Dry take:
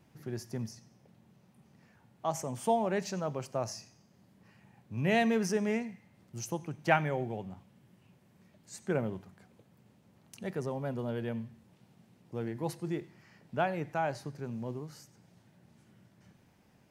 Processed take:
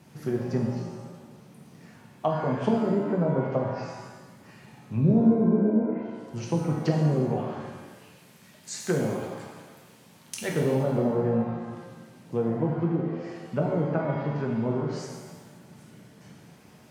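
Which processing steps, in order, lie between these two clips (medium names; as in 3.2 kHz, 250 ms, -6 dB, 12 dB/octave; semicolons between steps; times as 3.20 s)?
7.29–10.49 s: tilt shelf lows -5.5 dB; low-pass that closes with the level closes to 530 Hz, closed at -27 dBFS; treble shelf 8.2 kHz +6 dB; low-pass that closes with the level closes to 370 Hz, closed at -29.5 dBFS; high-pass 82 Hz; pitch-shifted reverb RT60 1.2 s, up +7 st, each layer -8 dB, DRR -0.5 dB; trim +8.5 dB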